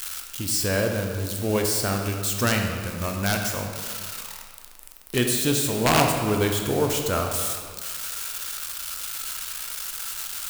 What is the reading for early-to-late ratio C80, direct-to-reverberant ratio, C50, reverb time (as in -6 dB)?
5.5 dB, 2.0 dB, 4.0 dB, 1.9 s